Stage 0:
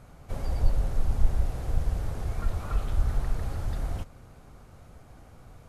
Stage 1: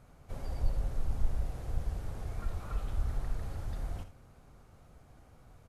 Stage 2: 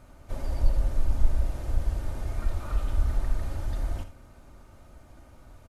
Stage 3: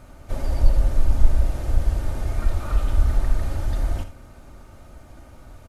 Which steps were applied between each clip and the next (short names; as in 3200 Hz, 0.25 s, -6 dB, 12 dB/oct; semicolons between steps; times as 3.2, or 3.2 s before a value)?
early reflections 58 ms -13.5 dB, 78 ms -13.5 dB; gain -7.5 dB
comb 3.3 ms, depth 45%; gain +5.5 dB
notch 1000 Hz, Q 25; gain +6.5 dB